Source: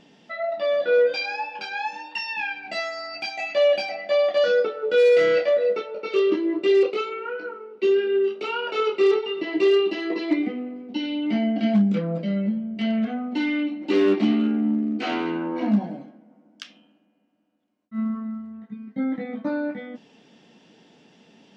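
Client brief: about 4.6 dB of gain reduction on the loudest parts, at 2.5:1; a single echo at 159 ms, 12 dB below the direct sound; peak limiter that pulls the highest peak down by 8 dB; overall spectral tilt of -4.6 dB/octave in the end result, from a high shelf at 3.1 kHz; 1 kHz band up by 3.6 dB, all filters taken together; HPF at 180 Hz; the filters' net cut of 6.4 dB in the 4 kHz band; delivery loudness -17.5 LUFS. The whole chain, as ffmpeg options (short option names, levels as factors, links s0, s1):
-af "highpass=180,equalizer=f=1000:t=o:g=6,highshelf=f=3100:g=-4,equalizer=f=4000:t=o:g=-7,acompressor=threshold=0.0891:ratio=2.5,alimiter=limit=0.0891:level=0:latency=1,aecho=1:1:159:0.251,volume=3.55"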